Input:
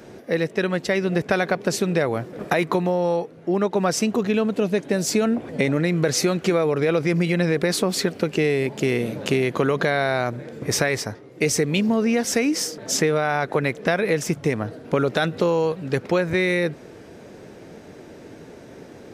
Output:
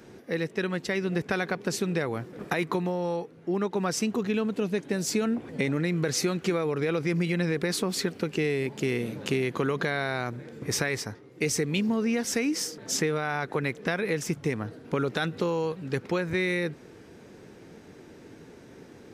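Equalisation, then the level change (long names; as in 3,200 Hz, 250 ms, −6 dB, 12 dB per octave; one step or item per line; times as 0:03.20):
parametric band 620 Hz −7 dB 0.5 octaves
−5.5 dB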